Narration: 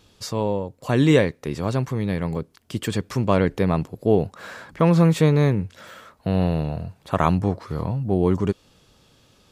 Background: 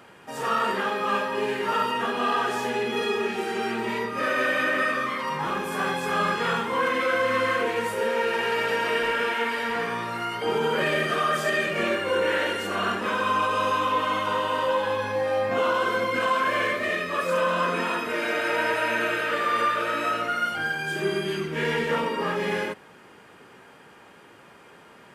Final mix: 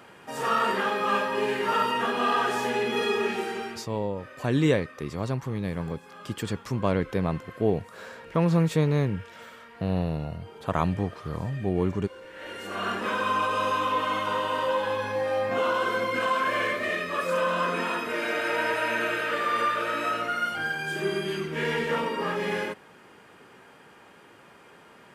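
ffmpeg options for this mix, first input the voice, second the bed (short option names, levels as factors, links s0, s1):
-filter_complex "[0:a]adelay=3550,volume=0.501[s0];[1:a]volume=10,afade=t=out:st=3.32:d=0.55:silence=0.0794328,afade=t=in:st=12.34:d=0.66:silence=0.1[s1];[s0][s1]amix=inputs=2:normalize=0"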